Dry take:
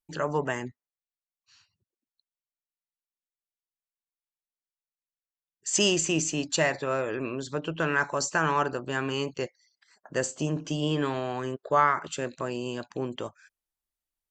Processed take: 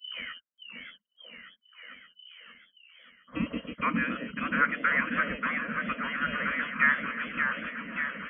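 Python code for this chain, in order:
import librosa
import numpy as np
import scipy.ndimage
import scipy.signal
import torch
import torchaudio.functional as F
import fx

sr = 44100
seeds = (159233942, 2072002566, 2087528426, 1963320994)

p1 = fx.tape_start_head(x, sr, length_s=0.9)
p2 = fx.low_shelf(p1, sr, hz=120.0, db=8.0)
p3 = fx.leveller(p2, sr, passes=1)
p4 = fx.stretch_vocoder(p3, sr, factor=0.58)
p5 = np.clip(p4, -10.0 ** (-23.5 / 20.0), 10.0 ** (-23.5 / 20.0))
p6 = p4 + (p5 * 10.0 ** (-9.0 / 20.0))
p7 = fx.freq_invert(p6, sr, carrier_hz=3000)
p8 = scipy.signal.sosfilt(scipy.signal.butter(2, 66.0, 'highpass', fs=sr, output='sos'), p7)
p9 = fx.peak_eq(p8, sr, hz=230.0, db=4.5, octaves=0.51)
p10 = fx.fixed_phaser(p9, sr, hz=550.0, stages=8)
p11 = fx.echo_stepped(p10, sr, ms=537, hz=210.0, octaves=1.4, feedback_pct=70, wet_db=0)
y = fx.echo_warbled(p11, sr, ms=581, feedback_pct=65, rate_hz=2.8, cents=151, wet_db=-6.0)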